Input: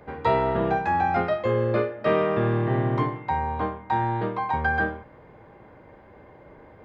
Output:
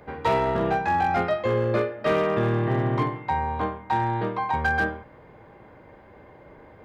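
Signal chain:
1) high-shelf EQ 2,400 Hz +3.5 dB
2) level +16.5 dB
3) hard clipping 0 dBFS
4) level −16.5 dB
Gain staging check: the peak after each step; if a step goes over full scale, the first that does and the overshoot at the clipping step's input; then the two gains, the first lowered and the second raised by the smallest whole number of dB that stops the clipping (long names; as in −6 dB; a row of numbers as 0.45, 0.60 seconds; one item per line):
−10.0, +6.5, 0.0, −16.5 dBFS
step 2, 6.5 dB
step 2 +9.5 dB, step 4 −9.5 dB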